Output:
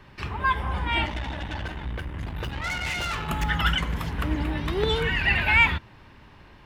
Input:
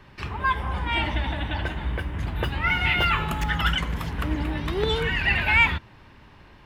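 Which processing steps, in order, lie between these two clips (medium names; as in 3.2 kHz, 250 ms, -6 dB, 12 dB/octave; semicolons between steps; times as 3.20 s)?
1.06–3.29 s: valve stage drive 26 dB, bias 0.65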